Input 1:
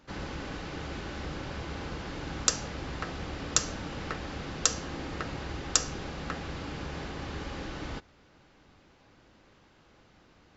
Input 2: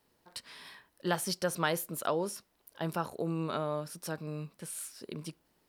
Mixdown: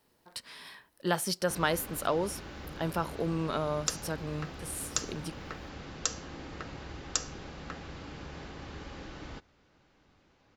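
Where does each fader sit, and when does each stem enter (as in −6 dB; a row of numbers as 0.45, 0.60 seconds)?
−6.0, +2.0 decibels; 1.40, 0.00 seconds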